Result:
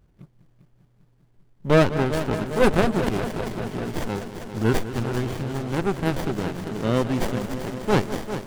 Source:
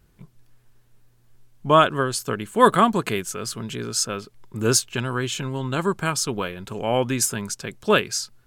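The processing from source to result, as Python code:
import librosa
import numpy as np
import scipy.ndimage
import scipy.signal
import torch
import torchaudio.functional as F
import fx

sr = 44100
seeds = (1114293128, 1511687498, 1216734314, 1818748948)

y = fx.echo_heads(x, sr, ms=199, heads='first and second', feedback_pct=70, wet_db=-13.0)
y = fx.running_max(y, sr, window=33)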